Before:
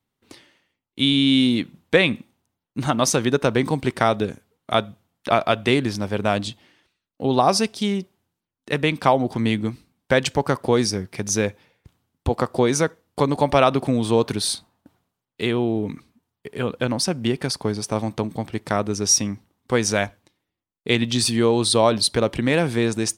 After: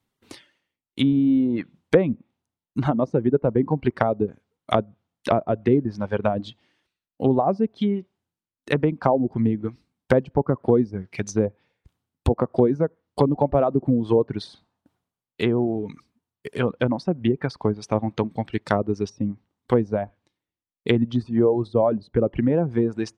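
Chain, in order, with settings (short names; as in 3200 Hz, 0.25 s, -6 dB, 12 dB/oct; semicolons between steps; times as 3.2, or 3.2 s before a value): reverb removal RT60 1.9 s; treble ducked by the level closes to 560 Hz, closed at -18 dBFS; gain +2.5 dB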